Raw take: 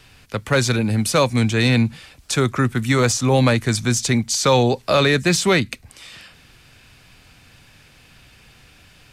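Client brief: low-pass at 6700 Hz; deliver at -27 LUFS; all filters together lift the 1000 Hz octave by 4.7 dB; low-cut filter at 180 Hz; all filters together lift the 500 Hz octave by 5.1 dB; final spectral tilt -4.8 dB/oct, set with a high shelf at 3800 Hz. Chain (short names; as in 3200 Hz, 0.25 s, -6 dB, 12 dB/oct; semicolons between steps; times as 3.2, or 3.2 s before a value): HPF 180 Hz; LPF 6700 Hz; bell 500 Hz +5 dB; bell 1000 Hz +5 dB; high shelf 3800 Hz -3.5 dB; gain -10 dB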